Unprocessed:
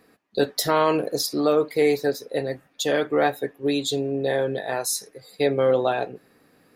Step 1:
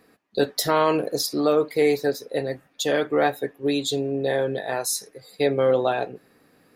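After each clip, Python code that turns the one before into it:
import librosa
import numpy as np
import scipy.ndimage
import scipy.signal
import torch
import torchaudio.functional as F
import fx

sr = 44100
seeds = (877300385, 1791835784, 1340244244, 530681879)

y = x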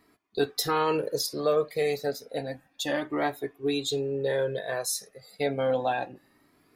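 y = fx.comb_cascade(x, sr, direction='rising', hz=0.31)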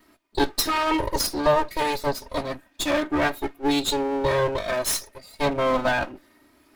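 y = fx.lower_of_two(x, sr, delay_ms=3.2)
y = F.gain(torch.from_numpy(y), 7.0).numpy()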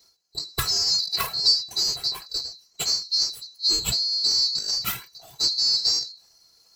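y = fx.band_swap(x, sr, width_hz=4000)
y = fx.end_taper(y, sr, db_per_s=150.0)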